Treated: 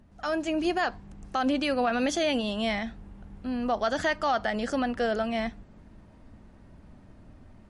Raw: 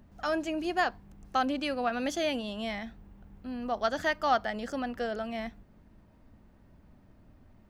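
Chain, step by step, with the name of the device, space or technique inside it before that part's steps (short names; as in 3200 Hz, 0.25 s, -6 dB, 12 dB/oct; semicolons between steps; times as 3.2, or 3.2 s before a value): low-bitrate web radio (AGC gain up to 7 dB; limiter -16.5 dBFS, peak gain reduction 9.5 dB; MP3 48 kbps 32000 Hz)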